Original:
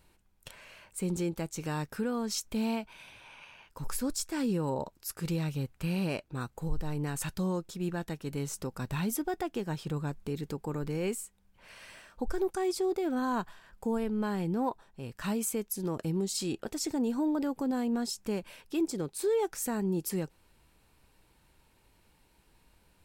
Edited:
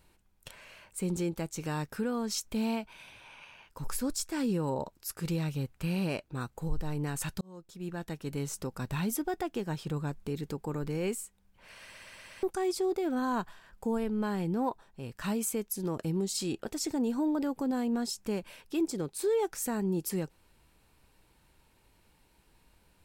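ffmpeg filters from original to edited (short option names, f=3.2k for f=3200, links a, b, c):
-filter_complex "[0:a]asplit=7[a][b][c][d][e][f][g];[a]atrim=end=7.41,asetpts=PTS-STARTPTS,afade=t=out:st=7.406:d=0.004:c=hsin[h];[b]atrim=start=7.41:end=11.952,asetpts=PTS-STARTPTS,afade=t=in:d=0.81[i];[c]atrim=start=11.828:end=11.952[j];[d]atrim=start=11.828:end=11.952[k];[e]atrim=start=11.828:end=11.952[l];[f]atrim=start=11.828:end=11.952[m];[g]atrim=start=12.428[n];[h][i]concat=n=2:v=0:a=1[o];[o][j]acrossfade=d=0.004:c1=hsin:c2=hsin[p];[p][k]acrossfade=d=0.004:c1=hsin:c2=hsin[q];[q][l]acrossfade=d=0.004:c1=hsin:c2=hsin[r];[r][m]acrossfade=d=0.004:c1=hsin:c2=hsin[s];[s][n]acrossfade=d=0.004:c1=hsin:c2=hsin"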